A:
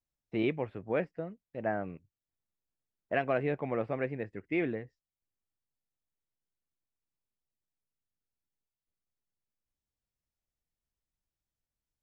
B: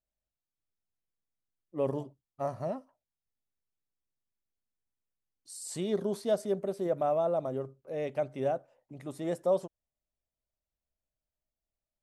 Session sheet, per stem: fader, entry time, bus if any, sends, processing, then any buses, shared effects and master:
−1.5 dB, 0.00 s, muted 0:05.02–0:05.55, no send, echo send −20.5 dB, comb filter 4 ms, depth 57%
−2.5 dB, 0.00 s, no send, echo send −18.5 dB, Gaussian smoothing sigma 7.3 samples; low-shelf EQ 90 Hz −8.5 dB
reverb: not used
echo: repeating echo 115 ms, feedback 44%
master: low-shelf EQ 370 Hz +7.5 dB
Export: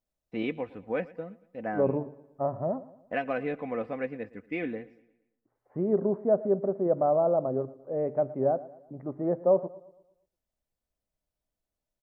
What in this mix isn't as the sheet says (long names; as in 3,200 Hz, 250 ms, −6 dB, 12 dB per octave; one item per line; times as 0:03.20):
stem B −2.5 dB → +6.5 dB
master: missing low-shelf EQ 370 Hz +7.5 dB